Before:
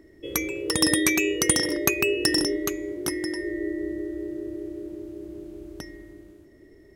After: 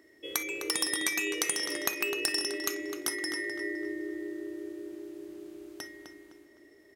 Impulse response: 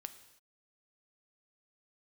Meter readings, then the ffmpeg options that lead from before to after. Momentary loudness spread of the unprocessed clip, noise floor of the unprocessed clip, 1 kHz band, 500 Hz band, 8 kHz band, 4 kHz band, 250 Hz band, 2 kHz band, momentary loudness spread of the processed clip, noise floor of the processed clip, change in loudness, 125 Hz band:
19 LU, -52 dBFS, -5.0 dB, -9.0 dB, -6.0 dB, -5.0 dB, -10.5 dB, -4.5 dB, 16 LU, -59 dBFS, -7.0 dB, -22.5 dB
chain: -filter_complex "[0:a]highpass=f=1.1k:p=1,acompressor=threshold=-28dB:ratio=10,asplit=2[a][b];[b]adelay=256,lowpass=f=4k:p=1,volume=-7dB,asplit=2[c][d];[d]adelay=256,lowpass=f=4k:p=1,volume=0.39,asplit=2[e][f];[f]adelay=256,lowpass=f=4k:p=1,volume=0.39,asplit=2[g][h];[h]adelay=256,lowpass=f=4k:p=1,volume=0.39,asplit=2[i][j];[j]adelay=256,lowpass=f=4k:p=1,volume=0.39[k];[a][c][e][g][i][k]amix=inputs=6:normalize=0[l];[1:a]atrim=start_sample=2205,atrim=end_sample=3087[m];[l][m]afir=irnorm=-1:irlink=0,volume=6dB"

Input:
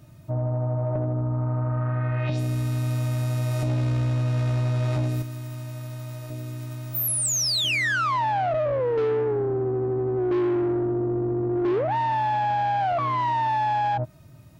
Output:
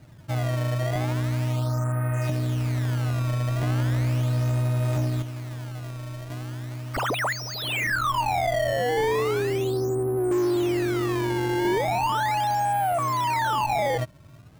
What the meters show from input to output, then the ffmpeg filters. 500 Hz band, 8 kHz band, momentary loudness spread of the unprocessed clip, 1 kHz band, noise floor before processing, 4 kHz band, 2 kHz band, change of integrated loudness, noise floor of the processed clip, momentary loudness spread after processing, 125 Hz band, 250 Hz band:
-0.5 dB, -8.5 dB, 12 LU, -0.5 dB, -46 dBFS, -3.0 dB, +1.5 dB, -1.0 dB, -46 dBFS, 10 LU, 0.0 dB, -0.5 dB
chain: -filter_complex "[0:a]acrusher=samples=20:mix=1:aa=0.000001:lfo=1:lforange=32:lforate=0.37,acrossover=split=2800[a][b];[b]acompressor=threshold=-36dB:ratio=4:attack=1:release=60[c];[a][c]amix=inputs=2:normalize=0"

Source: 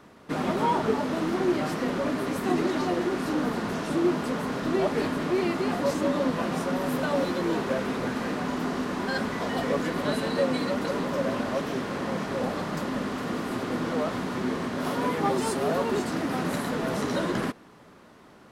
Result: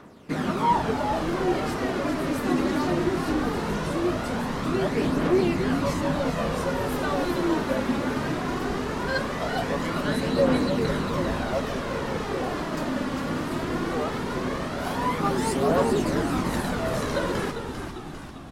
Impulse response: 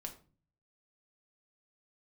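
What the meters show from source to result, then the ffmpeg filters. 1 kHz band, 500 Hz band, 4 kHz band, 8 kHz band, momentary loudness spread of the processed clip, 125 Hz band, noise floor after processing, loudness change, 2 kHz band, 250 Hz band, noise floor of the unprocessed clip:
+2.5 dB, +1.5 dB, +2.0 dB, +2.0 dB, 7 LU, +4.5 dB, -35 dBFS, +1.5 dB, +2.0 dB, +1.5 dB, -52 dBFS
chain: -filter_complex "[0:a]aphaser=in_gain=1:out_gain=1:delay=3.7:decay=0.44:speed=0.19:type=triangular,asplit=9[a][b][c][d][e][f][g][h][i];[b]adelay=398,afreqshift=-100,volume=-7.5dB[j];[c]adelay=796,afreqshift=-200,volume=-11.9dB[k];[d]adelay=1194,afreqshift=-300,volume=-16.4dB[l];[e]adelay=1592,afreqshift=-400,volume=-20.8dB[m];[f]adelay=1990,afreqshift=-500,volume=-25.2dB[n];[g]adelay=2388,afreqshift=-600,volume=-29.7dB[o];[h]adelay=2786,afreqshift=-700,volume=-34.1dB[p];[i]adelay=3184,afreqshift=-800,volume=-38.6dB[q];[a][j][k][l][m][n][o][p][q]amix=inputs=9:normalize=0"

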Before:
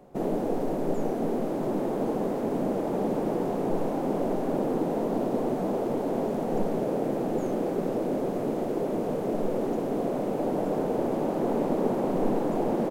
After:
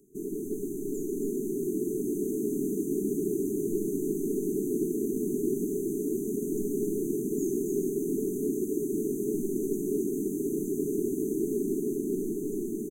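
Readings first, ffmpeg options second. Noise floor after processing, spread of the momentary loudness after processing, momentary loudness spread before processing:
-35 dBFS, 3 LU, 2 LU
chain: -filter_complex "[0:a]asplit=2[a][b];[b]asoftclip=type=tanh:threshold=-23dB,volume=-10dB[c];[a][c]amix=inputs=2:normalize=0,dynaudnorm=f=170:g=17:m=3.5dB,afftfilt=real='re*(1-between(b*sr/4096,440,6000))':imag='im*(1-between(b*sr/4096,440,6000))':win_size=4096:overlap=0.75,bass=f=250:g=-11,treble=f=4k:g=9,aecho=1:1:59|136|275|403|431:0.158|0.376|0.596|0.335|0.119,volume=-3.5dB"

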